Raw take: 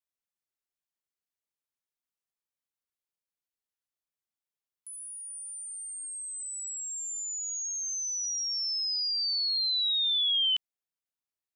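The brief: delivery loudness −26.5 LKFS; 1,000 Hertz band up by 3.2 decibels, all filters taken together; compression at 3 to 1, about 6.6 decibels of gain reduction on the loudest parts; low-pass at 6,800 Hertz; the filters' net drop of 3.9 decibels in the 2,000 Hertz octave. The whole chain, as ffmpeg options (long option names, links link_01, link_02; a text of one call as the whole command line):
ffmpeg -i in.wav -af "lowpass=6800,equalizer=frequency=1000:width_type=o:gain=6,equalizer=frequency=2000:width_type=o:gain=-7,acompressor=threshold=-37dB:ratio=3,volume=9dB" out.wav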